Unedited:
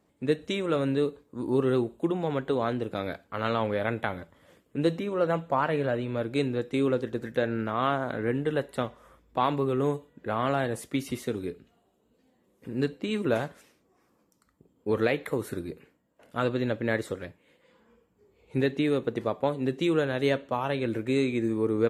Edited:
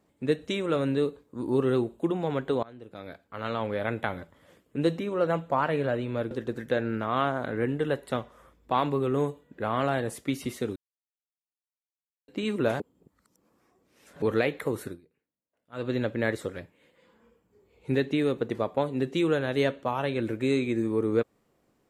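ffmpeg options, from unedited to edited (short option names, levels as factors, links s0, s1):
-filter_complex "[0:a]asplit=9[s0][s1][s2][s3][s4][s5][s6][s7][s8];[s0]atrim=end=2.63,asetpts=PTS-STARTPTS,afade=t=out:st=2.626:d=0.004:c=hsin:silence=0.0668344[s9];[s1]atrim=start=2.63:end=6.312,asetpts=PTS-STARTPTS,afade=t=in:d=1.42:silence=0.0668344[s10];[s2]atrim=start=6.968:end=11.42,asetpts=PTS-STARTPTS,afade=t=out:st=4.448:d=0.004:c=hsin[s11];[s3]atrim=start=11.42:end=12.94,asetpts=PTS-STARTPTS,volume=0[s12];[s4]atrim=start=12.94:end=13.462,asetpts=PTS-STARTPTS,afade=t=in:d=0.004:c=hsin[s13];[s5]atrim=start=13.458:end=14.882,asetpts=PTS-STARTPTS,areverse[s14];[s6]atrim=start=14.878:end=15.67,asetpts=PTS-STARTPTS,afade=t=out:st=0.602:d=0.19:silence=0.0668344[s15];[s7]atrim=start=15.67:end=16.38,asetpts=PTS-STARTPTS,volume=0.0668[s16];[s8]atrim=start=16.38,asetpts=PTS-STARTPTS,afade=t=in:d=0.19:silence=0.0668344[s17];[s9][s10]concat=n=2:v=0:a=1[s18];[s11][s12][s13]concat=n=3:v=0:a=1[s19];[s18][s19]acrossfade=d=0.004:c1=hsin:c2=hsin[s20];[s20][s14]acrossfade=d=0.004:c1=hsin:c2=hsin[s21];[s15][s16][s17]concat=n=3:v=0:a=1[s22];[s21][s22]acrossfade=d=0.004:c1=hsin:c2=hsin"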